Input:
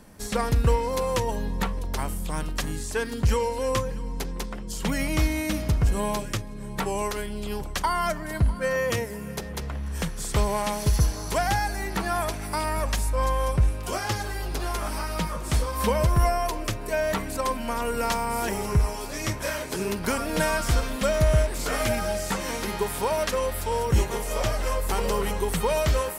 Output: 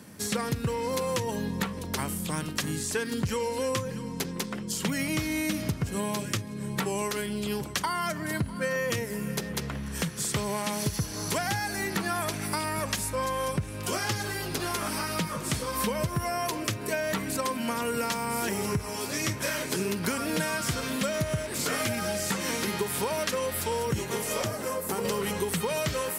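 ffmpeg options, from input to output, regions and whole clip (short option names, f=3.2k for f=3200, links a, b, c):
-filter_complex "[0:a]asettb=1/sr,asplit=3[a][b][c];[a]atrim=end=24.444[d];[b]atrim=start=24.44:end=25.05,asetpts=PTS-STARTPTS,afade=t=in:d=0.004:c=qsin,afade=t=out:st=0.606:d=0.004:c=qsin,highpass=120,equalizer=f=3.2k:w=0.54:g=-10[e];[c]atrim=start=25.046[f];[d][e]acrossfade=d=0.004:c1=hsin:c2=qsin[g];[g][f]acrossfade=d=0.004:c1=qsin:c2=hsin,highpass=f=99:w=0.5412,highpass=f=99:w=1.3066,equalizer=f=750:t=o:w=1.4:g=-6.5,acompressor=threshold=-30dB:ratio=6,volume=4.5dB"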